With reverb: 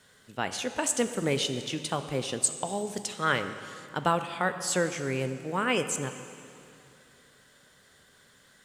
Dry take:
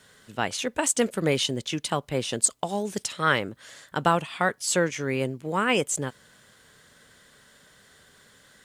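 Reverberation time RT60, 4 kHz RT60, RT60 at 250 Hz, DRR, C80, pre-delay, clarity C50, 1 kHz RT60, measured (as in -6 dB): 2.7 s, 2.2 s, 2.8 s, 8.5 dB, 11.0 dB, 7 ms, 10.0 dB, 2.6 s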